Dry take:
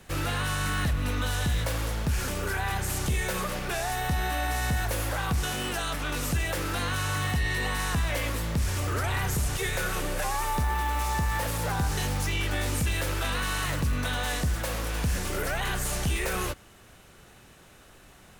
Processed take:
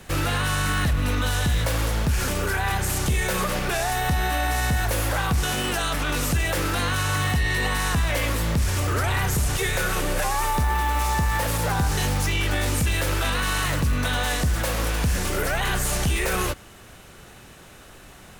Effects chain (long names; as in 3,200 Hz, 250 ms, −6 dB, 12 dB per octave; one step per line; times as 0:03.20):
brickwall limiter −22.5 dBFS, peak gain reduction 3 dB
level +7 dB